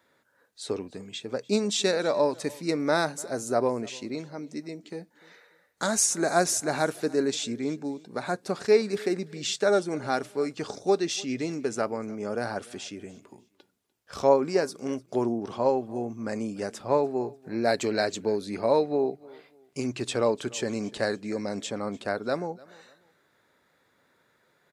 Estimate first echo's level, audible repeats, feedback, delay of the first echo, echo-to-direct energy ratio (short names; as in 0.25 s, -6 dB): -23.0 dB, 2, 30%, 0.296 s, -22.5 dB